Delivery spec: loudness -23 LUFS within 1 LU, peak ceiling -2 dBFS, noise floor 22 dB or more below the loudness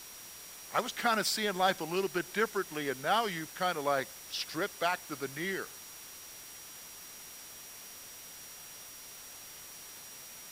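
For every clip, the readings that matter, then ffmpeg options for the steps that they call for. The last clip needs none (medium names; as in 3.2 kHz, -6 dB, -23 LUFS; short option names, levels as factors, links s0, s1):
steady tone 5.7 kHz; tone level -53 dBFS; noise floor -49 dBFS; noise floor target -55 dBFS; loudness -32.5 LUFS; peak level -15.0 dBFS; loudness target -23.0 LUFS
-> -af "bandreject=f=5700:w=30"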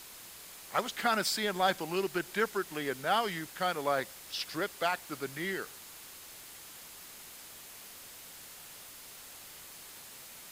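steady tone not found; noise floor -50 dBFS; noise floor target -55 dBFS
-> -af "afftdn=nr=6:nf=-50"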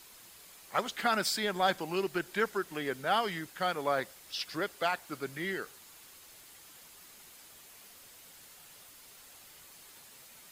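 noise floor -55 dBFS; loudness -33.0 LUFS; peak level -15.0 dBFS; loudness target -23.0 LUFS
-> -af "volume=3.16"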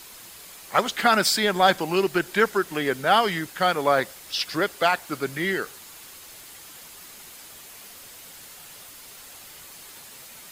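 loudness -23.0 LUFS; peak level -5.0 dBFS; noise floor -45 dBFS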